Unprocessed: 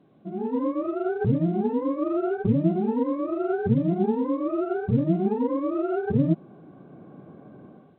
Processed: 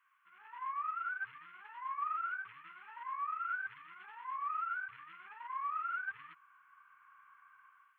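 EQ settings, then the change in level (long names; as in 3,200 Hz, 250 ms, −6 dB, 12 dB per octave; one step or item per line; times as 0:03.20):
elliptic high-pass filter 1,100 Hz, stop band 50 dB
phaser with its sweep stopped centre 1,600 Hz, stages 4
+4.5 dB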